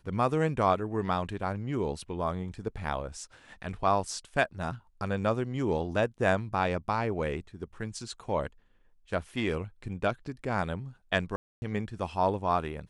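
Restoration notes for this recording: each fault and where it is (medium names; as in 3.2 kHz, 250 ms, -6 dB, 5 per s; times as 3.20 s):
11.36–11.62 s: dropout 260 ms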